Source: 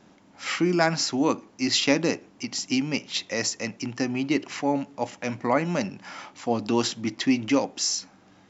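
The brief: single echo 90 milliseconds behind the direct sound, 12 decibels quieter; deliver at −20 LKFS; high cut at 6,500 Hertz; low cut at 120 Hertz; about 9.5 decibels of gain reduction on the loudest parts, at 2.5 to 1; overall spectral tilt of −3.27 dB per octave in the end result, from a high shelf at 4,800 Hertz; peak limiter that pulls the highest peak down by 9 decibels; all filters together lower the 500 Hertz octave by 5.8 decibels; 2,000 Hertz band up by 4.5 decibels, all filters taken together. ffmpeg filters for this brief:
ffmpeg -i in.wav -af "highpass=120,lowpass=6500,equalizer=frequency=500:width_type=o:gain=-8,equalizer=frequency=2000:width_type=o:gain=6.5,highshelf=frequency=4800:gain=-3,acompressor=threshold=-32dB:ratio=2.5,alimiter=level_in=1dB:limit=-24dB:level=0:latency=1,volume=-1dB,aecho=1:1:90:0.251,volume=15.5dB" out.wav

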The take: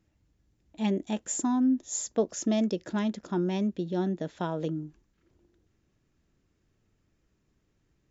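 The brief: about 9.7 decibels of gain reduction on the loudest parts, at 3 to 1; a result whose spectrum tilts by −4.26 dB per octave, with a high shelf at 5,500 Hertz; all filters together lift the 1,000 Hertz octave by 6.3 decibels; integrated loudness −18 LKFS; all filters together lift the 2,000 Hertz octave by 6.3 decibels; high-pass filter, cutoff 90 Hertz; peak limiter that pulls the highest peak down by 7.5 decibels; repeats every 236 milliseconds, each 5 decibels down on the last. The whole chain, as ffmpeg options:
ffmpeg -i in.wav -af "highpass=90,equalizer=frequency=1000:width_type=o:gain=6.5,equalizer=frequency=2000:width_type=o:gain=5,highshelf=frequency=5500:gain=7.5,acompressor=threshold=-34dB:ratio=3,alimiter=level_in=3dB:limit=-24dB:level=0:latency=1,volume=-3dB,aecho=1:1:236|472|708|944|1180|1416|1652:0.562|0.315|0.176|0.0988|0.0553|0.031|0.0173,volume=18dB" out.wav

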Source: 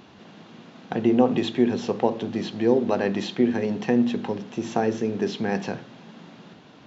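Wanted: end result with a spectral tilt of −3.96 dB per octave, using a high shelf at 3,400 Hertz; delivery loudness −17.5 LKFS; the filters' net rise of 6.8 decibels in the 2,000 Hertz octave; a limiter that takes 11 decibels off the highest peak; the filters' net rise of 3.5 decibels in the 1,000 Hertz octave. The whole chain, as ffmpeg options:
ffmpeg -i in.wav -af "equalizer=frequency=1000:width_type=o:gain=3.5,equalizer=frequency=2000:width_type=o:gain=5.5,highshelf=frequency=3400:gain=6.5,volume=9dB,alimiter=limit=-5.5dB:level=0:latency=1" out.wav

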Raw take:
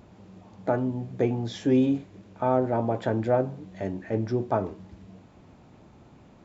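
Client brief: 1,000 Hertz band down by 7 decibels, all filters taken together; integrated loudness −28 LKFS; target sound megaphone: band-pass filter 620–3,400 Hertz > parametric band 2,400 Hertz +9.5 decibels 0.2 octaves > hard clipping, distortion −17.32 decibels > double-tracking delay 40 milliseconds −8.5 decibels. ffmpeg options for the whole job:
ffmpeg -i in.wav -filter_complex "[0:a]highpass=620,lowpass=3400,equalizer=frequency=1000:width_type=o:gain=-8,equalizer=frequency=2400:width_type=o:width=0.2:gain=9.5,asoftclip=type=hard:threshold=-24.5dB,asplit=2[link_01][link_02];[link_02]adelay=40,volume=-8.5dB[link_03];[link_01][link_03]amix=inputs=2:normalize=0,volume=8.5dB" out.wav

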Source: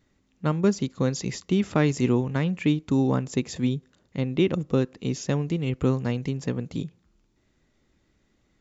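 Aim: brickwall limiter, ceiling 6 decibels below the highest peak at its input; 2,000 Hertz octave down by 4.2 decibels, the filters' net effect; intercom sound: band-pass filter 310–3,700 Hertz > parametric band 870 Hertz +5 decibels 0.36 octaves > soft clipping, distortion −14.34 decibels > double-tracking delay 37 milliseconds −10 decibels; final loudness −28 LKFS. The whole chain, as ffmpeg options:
ffmpeg -i in.wav -filter_complex "[0:a]equalizer=frequency=2000:width_type=o:gain=-5,alimiter=limit=-16.5dB:level=0:latency=1,highpass=310,lowpass=3700,equalizer=frequency=870:width_type=o:width=0.36:gain=5,asoftclip=threshold=-24dB,asplit=2[link_01][link_02];[link_02]adelay=37,volume=-10dB[link_03];[link_01][link_03]amix=inputs=2:normalize=0,volume=7dB" out.wav

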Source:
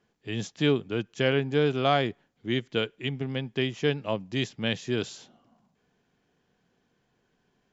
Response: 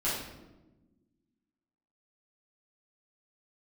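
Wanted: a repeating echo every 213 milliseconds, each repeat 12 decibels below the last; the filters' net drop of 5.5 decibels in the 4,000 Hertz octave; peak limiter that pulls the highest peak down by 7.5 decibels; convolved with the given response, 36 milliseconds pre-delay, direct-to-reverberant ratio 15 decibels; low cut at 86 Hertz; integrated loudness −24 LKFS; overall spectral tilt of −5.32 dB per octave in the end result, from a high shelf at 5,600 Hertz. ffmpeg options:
-filter_complex "[0:a]highpass=86,equalizer=frequency=4000:width_type=o:gain=-5.5,highshelf=frequency=5600:gain=-7.5,alimiter=limit=-18dB:level=0:latency=1,aecho=1:1:213|426|639:0.251|0.0628|0.0157,asplit=2[link_01][link_02];[1:a]atrim=start_sample=2205,adelay=36[link_03];[link_02][link_03]afir=irnorm=-1:irlink=0,volume=-23dB[link_04];[link_01][link_04]amix=inputs=2:normalize=0,volume=7dB"

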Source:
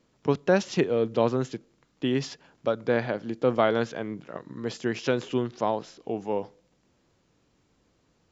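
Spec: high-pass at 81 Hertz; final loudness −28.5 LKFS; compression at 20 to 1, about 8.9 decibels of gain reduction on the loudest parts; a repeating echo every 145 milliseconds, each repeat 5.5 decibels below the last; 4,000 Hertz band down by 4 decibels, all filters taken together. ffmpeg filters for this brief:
ffmpeg -i in.wav -af "highpass=81,equalizer=frequency=4000:width_type=o:gain=-5.5,acompressor=threshold=-25dB:ratio=20,aecho=1:1:145|290|435|580|725|870|1015:0.531|0.281|0.149|0.079|0.0419|0.0222|0.0118,volume=4dB" out.wav

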